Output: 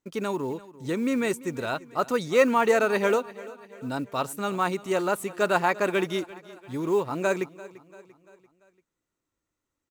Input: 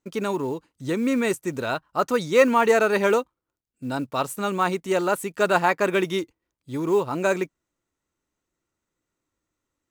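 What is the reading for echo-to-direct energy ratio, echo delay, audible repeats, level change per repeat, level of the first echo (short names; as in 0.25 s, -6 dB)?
-18.0 dB, 0.342 s, 3, -6.0 dB, -19.0 dB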